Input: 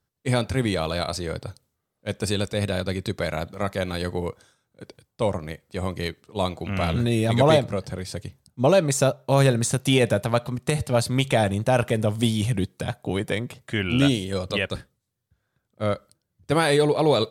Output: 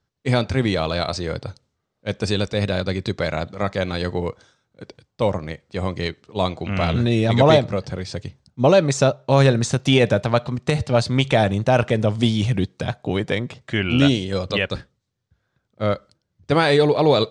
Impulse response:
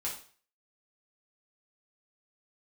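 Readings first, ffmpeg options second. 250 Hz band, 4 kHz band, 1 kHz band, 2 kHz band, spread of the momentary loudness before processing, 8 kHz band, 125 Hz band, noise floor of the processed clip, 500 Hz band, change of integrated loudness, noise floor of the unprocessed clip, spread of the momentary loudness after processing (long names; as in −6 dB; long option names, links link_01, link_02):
+3.5 dB, +3.5 dB, +3.5 dB, +3.5 dB, 12 LU, −2.5 dB, +3.5 dB, −76 dBFS, +3.5 dB, +3.5 dB, −79 dBFS, 12 LU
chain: -af "lowpass=frequency=6600:width=0.5412,lowpass=frequency=6600:width=1.3066,volume=3.5dB"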